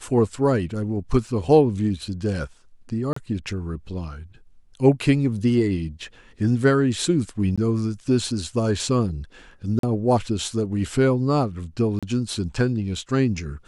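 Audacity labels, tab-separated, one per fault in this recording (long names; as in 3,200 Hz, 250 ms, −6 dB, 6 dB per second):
1.270000	1.270000	drop-out 2.2 ms
3.130000	3.160000	drop-out 34 ms
7.560000	7.580000	drop-out 16 ms
9.790000	9.830000	drop-out 43 ms
11.990000	12.030000	drop-out 36 ms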